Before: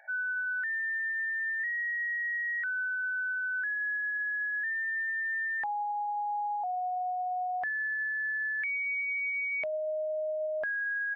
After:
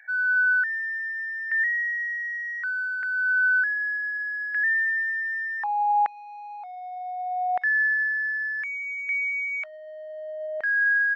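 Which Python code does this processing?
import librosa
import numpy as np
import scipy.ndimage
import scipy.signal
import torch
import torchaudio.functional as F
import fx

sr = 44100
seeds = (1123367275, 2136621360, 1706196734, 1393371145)

p1 = fx.peak_eq(x, sr, hz=2000.0, db=-5.0, octaves=0.4)
p2 = 10.0 ** (-36.5 / 20.0) * np.tanh(p1 / 10.0 ** (-36.5 / 20.0))
p3 = p1 + (p2 * librosa.db_to_amplitude(-11.5))
y = fx.filter_lfo_highpass(p3, sr, shape='saw_down', hz=0.66, low_hz=810.0, high_hz=1900.0, q=3.9)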